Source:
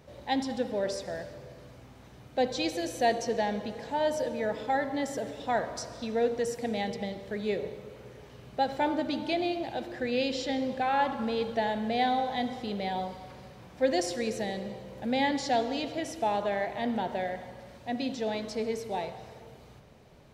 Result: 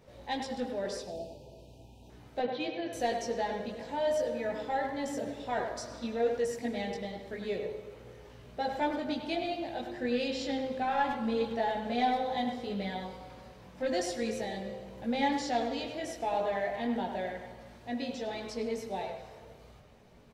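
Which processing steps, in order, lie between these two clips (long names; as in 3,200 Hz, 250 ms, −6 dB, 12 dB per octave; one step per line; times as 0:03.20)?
0:01.02–0:02.09: time-frequency box erased 970–2,400 Hz
0:02.39–0:02.93: elliptic band-pass filter 130–3,400 Hz, stop band 40 dB
soft clipping −17.5 dBFS, distortion −23 dB
multi-voice chorus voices 6, 0.35 Hz, delay 19 ms, depth 2.5 ms
far-end echo of a speakerphone 100 ms, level −7 dB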